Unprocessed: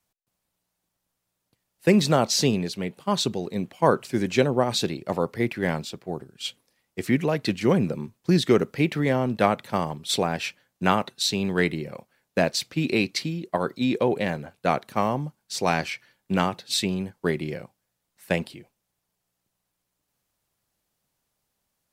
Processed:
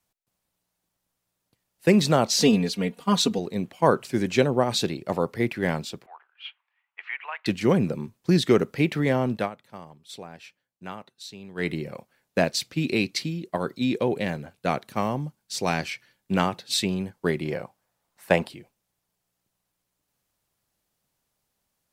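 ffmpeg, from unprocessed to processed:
-filter_complex "[0:a]asettb=1/sr,asplit=3[a][b][c];[a]atrim=end=2.404[d];[b]atrim=start=2.4:end=3.39,asetpts=PTS-STARTPTS,afade=t=in:d=0.004:c=qsin,afade=t=out:st=0.986:d=0.004:c=qsin,aecho=1:1:4.2:0.99,atrim=end_sample=43659[e];[c]atrim=start=3.386[f];[d][e]acrossfade=d=0.004:c1=hsin:c2=qsin[g];[g][f]acrossfade=d=0.004:c1=qsin:c2=hsin,asettb=1/sr,asplit=3[h][i][j];[h]atrim=end=6.064[k];[i]atrim=start=6.06:end=7.46,asetpts=PTS-STARTPTS,afade=t=in:d=0.004:c=qsin,afade=t=out:st=1.396:d=0.004:c=qsin,asuperpass=centerf=1600:order=8:qfactor=0.78[l];[j]atrim=start=7.456[m];[k][l]acrossfade=d=0.004:c1=hsin:c2=qsin[n];[n][m]acrossfade=d=0.004:c1=qsin:c2=hsin,asettb=1/sr,asplit=3[o][p][q];[o]atrim=end=12.444[r];[p]atrim=start=12.44:end=16.32,asetpts=PTS-STARTPTS,afade=t=in:d=0.004:c=qsin,afade=t=out:st=3.876:d=0.004:c=qsin,equalizer=f=900:w=0.55:g=-3.5[s];[q]atrim=start=16.316[t];[r][s]acrossfade=d=0.004:c1=hsin:c2=qsin[u];[u][t]acrossfade=d=0.004:c1=qsin:c2=hsin,asettb=1/sr,asplit=3[v][w][x];[v]atrim=end=17.454[y];[w]atrim=start=17.45:end=18.49,asetpts=PTS-STARTPTS,afade=t=in:d=0.004:c=qsin,afade=t=out:st=1.036:d=0.004:c=qsin,equalizer=f=880:t=o:w=1.8:g=8.5[z];[x]atrim=start=18.486[aa];[y][z]acrossfade=d=0.004:c1=hsin:c2=qsin[ab];[ab][aa]acrossfade=d=0.004:c1=qsin:c2=hsin,asplit=3[ac][ad][ae];[ac]atrim=end=9.5,asetpts=PTS-STARTPTS,afade=t=out:st=9.33:d=0.17:silence=0.149624[af];[ad]atrim=start=9.5:end=11.55,asetpts=PTS-STARTPTS,volume=-16.5dB[ag];[ae]atrim=start=11.55,asetpts=PTS-STARTPTS,afade=t=in:d=0.17:silence=0.149624[ah];[af][ag][ah]concat=n=3:v=0:a=1"

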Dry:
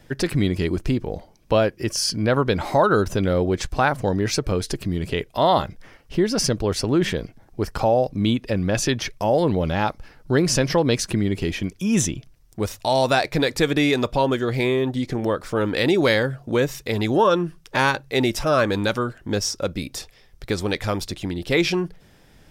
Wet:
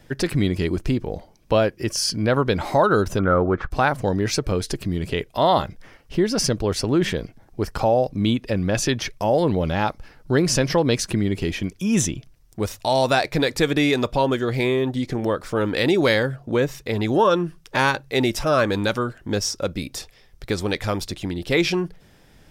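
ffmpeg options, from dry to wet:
-filter_complex "[0:a]asplit=3[a][b][c];[a]afade=t=out:st=3.18:d=0.02[d];[b]lowpass=f=1.3k:t=q:w=6.1,afade=t=in:st=3.18:d=0.02,afade=t=out:st=3.7:d=0.02[e];[c]afade=t=in:st=3.7:d=0.02[f];[d][e][f]amix=inputs=3:normalize=0,asettb=1/sr,asplit=3[g][h][i];[g]atrim=end=16.364[j];[h]atrim=start=16.36:end=17.08,asetpts=PTS-STARTPTS,afade=t=in:d=0.004:c=qsin,afade=t=out:st=0.716:d=0.004:c=qsin,highshelf=f=3.5k:g=-5.5[k];[i]atrim=start=17.076[l];[j][k]acrossfade=d=0.004:c1=hsin:c2=qsin[m];[m][l]acrossfade=d=0.004:c1=qsin:c2=hsin"

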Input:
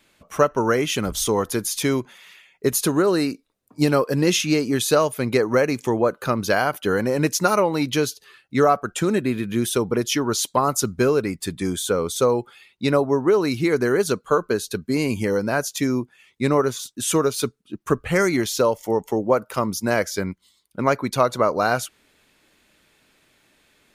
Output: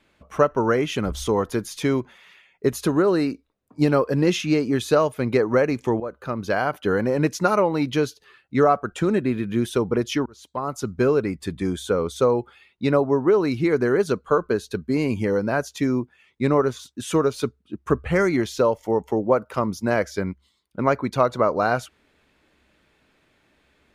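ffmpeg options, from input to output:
-filter_complex "[0:a]asplit=3[a][b][c];[a]atrim=end=6,asetpts=PTS-STARTPTS,afade=t=out:st=5.996:d=0.004:c=hsin:silence=0.223872[d];[b]atrim=start=6:end=10.26,asetpts=PTS-STARTPTS,afade=t=in:d=0.76:silence=0.223872,afade=t=out:st=4.256:d=0.004:c=hsin[e];[c]atrim=start=10.26,asetpts=PTS-STARTPTS,afade=t=in:d=0.83[f];[d][e][f]concat=n=3:v=0:a=1,lowpass=f=2.1k:p=1,equalizer=f=68:w=7.6:g=13"

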